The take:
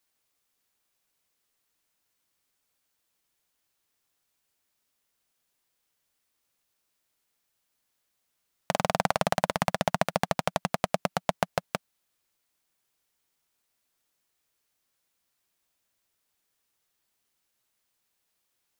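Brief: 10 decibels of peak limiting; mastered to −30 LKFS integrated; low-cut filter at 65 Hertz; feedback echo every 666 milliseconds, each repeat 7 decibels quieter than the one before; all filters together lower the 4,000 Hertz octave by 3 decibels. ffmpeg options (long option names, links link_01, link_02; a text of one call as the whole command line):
ffmpeg -i in.wav -af "highpass=65,equalizer=frequency=4000:width_type=o:gain=-4,alimiter=limit=-15.5dB:level=0:latency=1,aecho=1:1:666|1332|1998|2664|3330:0.447|0.201|0.0905|0.0407|0.0183,volume=8dB" out.wav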